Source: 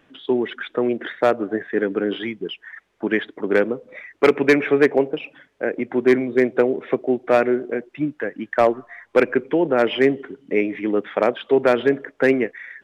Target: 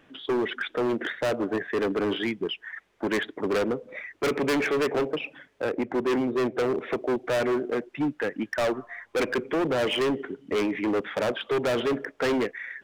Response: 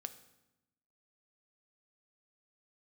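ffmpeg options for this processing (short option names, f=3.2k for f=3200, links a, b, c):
-filter_complex "[0:a]asettb=1/sr,asplit=3[a][b][c];[a]atrim=end=5.634[d];[b]atrim=start=5.63:end=6.75,asetpts=PTS-STARTPTS,afade=t=in:d=0.004:c=qsin,afade=t=out:st=1.116:d=0.004:c=qsin,highshelf=f=2.6k:g=-10[e];[c]atrim=start=6.746[f];[d][e]acrossfade=d=0.004:c1=hsin:c2=qsin[g];[g][f]acrossfade=d=0.004:c1=qsin:c2=hsin,volume=22dB,asoftclip=hard,volume=-22dB"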